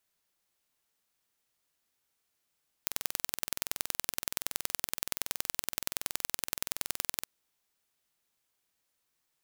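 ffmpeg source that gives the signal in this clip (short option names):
-f lavfi -i "aevalsrc='0.794*eq(mod(n,2070),0)*(0.5+0.5*eq(mod(n,4140),0))':d=4.41:s=44100"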